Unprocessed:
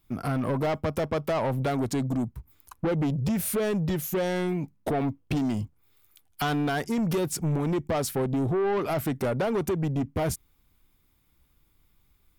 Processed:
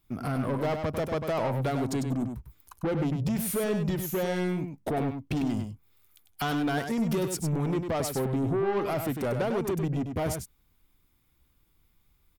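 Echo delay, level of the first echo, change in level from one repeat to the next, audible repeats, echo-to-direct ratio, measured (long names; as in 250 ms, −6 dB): 99 ms, −6.5 dB, repeats not evenly spaced, 1, −6.5 dB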